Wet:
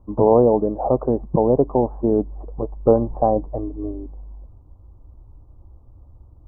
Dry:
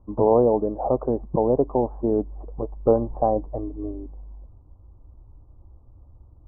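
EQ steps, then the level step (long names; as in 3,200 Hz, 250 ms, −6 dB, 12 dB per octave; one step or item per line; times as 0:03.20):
dynamic equaliser 160 Hz, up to +4 dB, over −35 dBFS, Q 1.5
+3.0 dB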